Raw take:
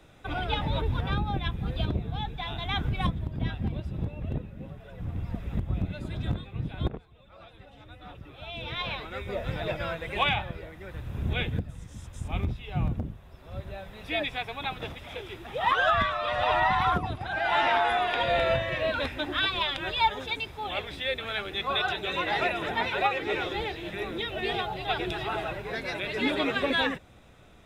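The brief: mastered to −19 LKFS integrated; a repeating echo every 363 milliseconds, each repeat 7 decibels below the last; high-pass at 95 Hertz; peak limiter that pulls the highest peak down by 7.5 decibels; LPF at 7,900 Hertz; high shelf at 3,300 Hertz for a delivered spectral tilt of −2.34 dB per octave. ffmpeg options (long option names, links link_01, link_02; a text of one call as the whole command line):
ffmpeg -i in.wav -af "highpass=95,lowpass=7900,highshelf=frequency=3300:gain=6.5,alimiter=limit=-19dB:level=0:latency=1,aecho=1:1:363|726|1089|1452|1815:0.447|0.201|0.0905|0.0407|0.0183,volume=11dB" out.wav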